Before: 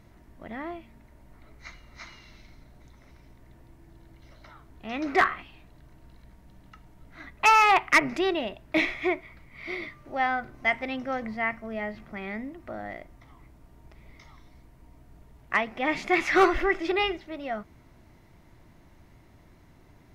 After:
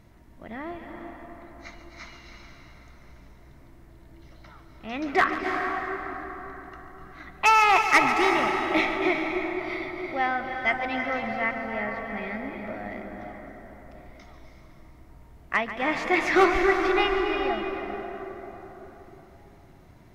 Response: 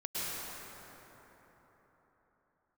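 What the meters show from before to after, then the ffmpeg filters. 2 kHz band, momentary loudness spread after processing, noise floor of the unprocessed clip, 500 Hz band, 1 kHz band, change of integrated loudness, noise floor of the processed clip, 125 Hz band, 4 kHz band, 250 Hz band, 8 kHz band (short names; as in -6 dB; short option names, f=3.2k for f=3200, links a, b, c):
+2.0 dB, 23 LU, -56 dBFS, +2.5 dB, +2.0 dB, +1.5 dB, -52 dBFS, +2.0 dB, +1.5 dB, +2.5 dB, +1.5 dB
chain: -filter_complex "[0:a]asplit=2[a][b];[1:a]atrim=start_sample=2205,adelay=142[c];[b][c]afir=irnorm=-1:irlink=0,volume=-7.5dB[d];[a][d]amix=inputs=2:normalize=0"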